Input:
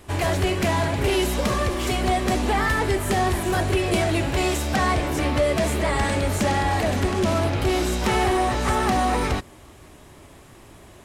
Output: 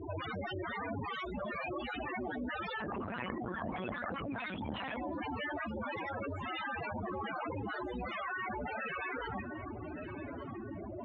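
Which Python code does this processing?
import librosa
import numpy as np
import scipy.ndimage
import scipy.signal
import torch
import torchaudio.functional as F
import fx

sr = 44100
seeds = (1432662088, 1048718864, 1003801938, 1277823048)

y = fx.rattle_buzz(x, sr, strikes_db=-30.0, level_db=-28.0)
y = fx.tilt_eq(y, sr, slope=1.5)
y = fx.notch(y, sr, hz=1600.0, q=5.6)
y = fx.rider(y, sr, range_db=10, speed_s=0.5)
y = 10.0 ** (-27.0 / 20.0) * (np.abs((y / 10.0 ** (-27.0 / 20.0) + 3.0) % 4.0 - 2.0) - 1.0)
y = fx.spec_topn(y, sr, count=8)
y = fx.echo_thinned(y, sr, ms=1161, feedback_pct=31, hz=410.0, wet_db=-21.5)
y = fx.lpc_vocoder(y, sr, seeds[0], excitation='pitch_kept', order=8, at=(2.8, 4.97))
y = fx.cabinet(y, sr, low_hz=110.0, low_slope=12, high_hz=3000.0, hz=(140.0, 220.0, 400.0), db=(-9, 4, -6))
y = fx.env_flatten(y, sr, amount_pct=70)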